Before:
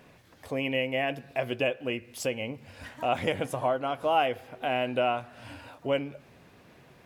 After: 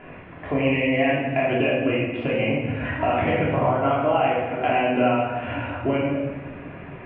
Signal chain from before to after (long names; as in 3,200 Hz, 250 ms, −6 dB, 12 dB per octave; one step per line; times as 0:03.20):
Butterworth low-pass 2,800 Hz 48 dB per octave
in parallel at +0.5 dB: brickwall limiter −23.5 dBFS, peak gain reduction 11 dB
on the sum: downward compressor, threshold −27 dBFS, peak gain reduction 10 dB
rectangular room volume 760 cubic metres, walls mixed, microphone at 3.1 metres
level +2.5 dB